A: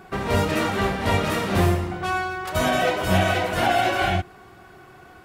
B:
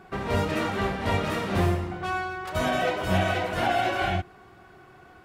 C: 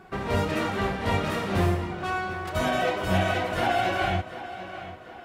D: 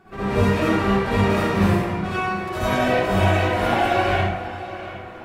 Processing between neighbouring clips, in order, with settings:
high shelf 6400 Hz -7 dB; gain -4 dB
tape echo 0.741 s, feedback 50%, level -12.5 dB, low-pass 5600 Hz
reverb RT60 0.85 s, pre-delay 52 ms, DRR -10.5 dB; gain -5 dB

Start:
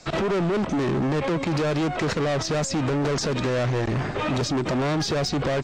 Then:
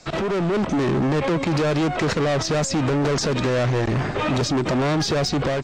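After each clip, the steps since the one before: AGC gain up to 3 dB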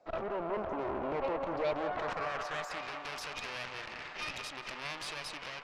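band-pass sweep 630 Hz -> 2600 Hz, 1.63–2.94; added harmonics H 6 -14 dB, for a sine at -17.5 dBFS; narrowing echo 0.185 s, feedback 84%, band-pass 960 Hz, level -5.5 dB; gain -7.5 dB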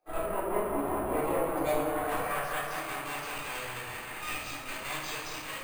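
pump 151 bpm, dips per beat 2, -19 dB, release 0.139 s; shoebox room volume 390 m³, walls mixed, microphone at 3.8 m; careless resampling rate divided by 4×, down filtered, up hold; gain -4.5 dB

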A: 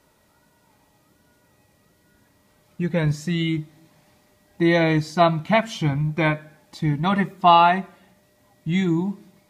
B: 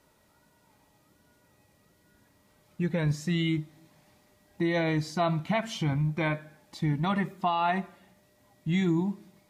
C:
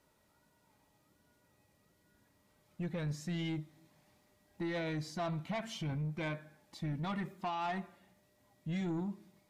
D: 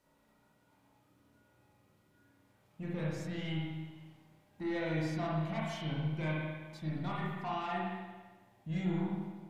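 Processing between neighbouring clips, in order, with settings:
limiter -14 dBFS, peak gain reduction 11.5 dB; gain -4 dB
soft clip -24.5 dBFS, distortion -14 dB; gain -7 dB
spring tank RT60 1.3 s, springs 32/50 ms, chirp 75 ms, DRR -5 dB; gain -4 dB

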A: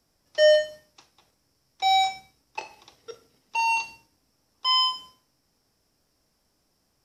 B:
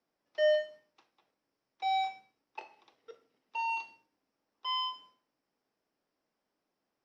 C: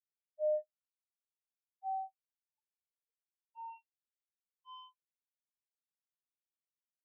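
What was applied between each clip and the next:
three-band isolator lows -20 dB, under 200 Hz, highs -18 dB, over 3700 Hz; gain -9 dB
soft clip -30.5 dBFS, distortion -9 dB; spectral expander 4:1; gain +3.5 dB

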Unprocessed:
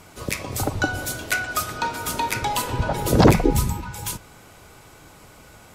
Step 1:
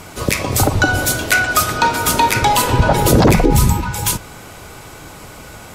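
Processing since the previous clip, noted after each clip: maximiser +12.5 dB; gain -1 dB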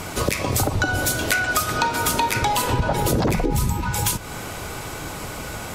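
compressor 4:1, threshold -24 dBFS, peak gain reduction 14.5 dB; gain +4 dB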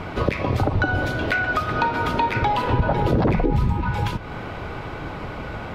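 air absorption 350 m; gain +2 dB

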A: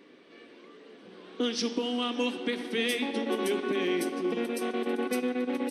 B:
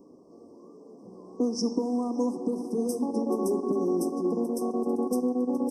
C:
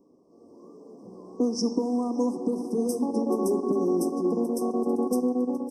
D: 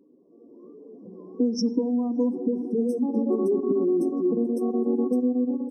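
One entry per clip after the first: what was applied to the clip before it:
Chebyshev band-stop 1100–5200 Hz, order 5; low shelf 170 Hz +12 dB; gain +1 dB
AGC gain up to 9.5 dB; gain -7.5 dB
spectral contrast raised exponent 1.7; gain +2 dB

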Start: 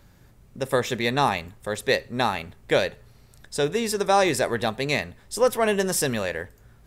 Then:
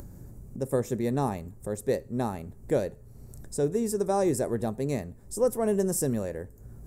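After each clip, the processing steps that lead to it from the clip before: EQ curve 340 Hz 0 dB, 3400 Hz -25 dB, 7600 Hz -4 dB; upward compressor, threshold -34 dBFS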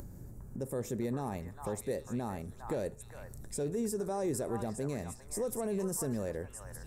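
limiter -23.5 dBFS, peak gain reduction 10 dB; delay with a stepping band-pass 0.406 s, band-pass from 1200 Hz, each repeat 1.4 oct, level -0.5 dB; gain -2.5 dB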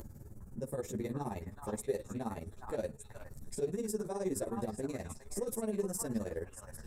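tremolo 19 Hz, depth 86%; ensemble effect; gain +4.5 dB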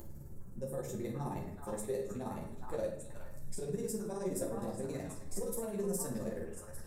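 high shelf 11000 Hz +5.5 dB; shoebox room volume 170 m³, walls mixed, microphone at 0.9 m; gain -4 dB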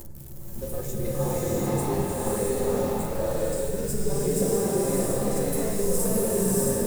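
switching spikes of -40.5 dBFS; bloom reverb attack 0.66 s, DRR -7 dB; gain +5.5 dB

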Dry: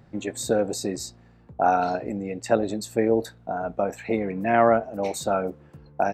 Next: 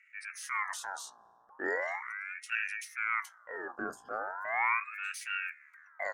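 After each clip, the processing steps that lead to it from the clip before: elliptic band-stop 720–4700 Hz, stop band 40 dB; transient shaper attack -6 dB, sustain +3 dB; ring modulator with a swept carrier 1500 Hz, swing 40%, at 0.38 Hz; gain -7 dB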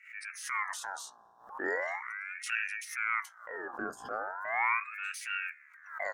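backwards sustainer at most 110 dB/s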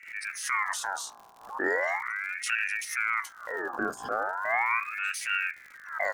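limiter -23.5 dBFS, peak gain reduction 7 dB; crackle 100/s -47 dBFS; gain +7 dB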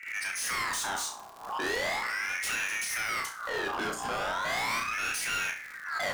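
overloaded stage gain 35.5 dB; on a send: flutter echo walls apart 5.6 m, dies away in 0.34 s; on the sum: gain +5 dB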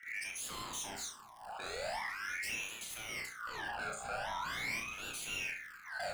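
phaser stages 12, 0.44 Hz, lowest notch 310–1900 Hz; on a send at -8.5 dB: reverb, pre-delay 47 ms; on the sum: record warp 78 rpm, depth 100 cents; gain -5.5 dB

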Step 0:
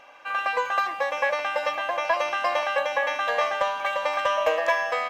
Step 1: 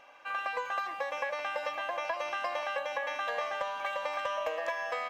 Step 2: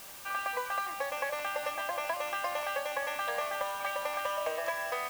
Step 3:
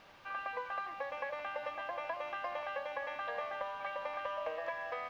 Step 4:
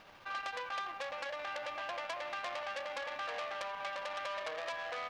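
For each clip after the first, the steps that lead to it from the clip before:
compressor, threshold -24 dBFS, peak gain reduction 7.5 dB; gain -6 dB
added noise white -48 dBFS
air absorption 280 m; gain -4 dB
core saturation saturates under 3900 Hz; gain +3 dB

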